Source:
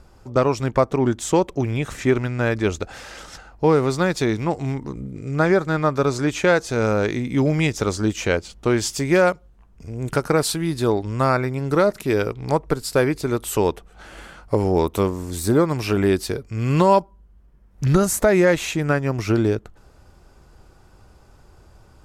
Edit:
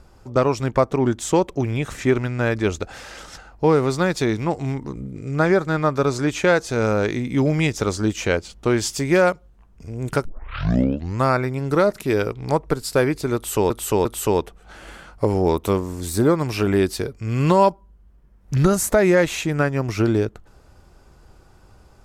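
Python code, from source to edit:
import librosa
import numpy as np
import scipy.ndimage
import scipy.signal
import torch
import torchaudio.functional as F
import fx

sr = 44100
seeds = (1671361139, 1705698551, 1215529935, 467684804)

y = fx.edit(x, sr, fx.tape_start(start_s=10.25, length_s=0.98),
    fx.repeat(start_s=13.35, length_s=0.35, count=3), tone=tone)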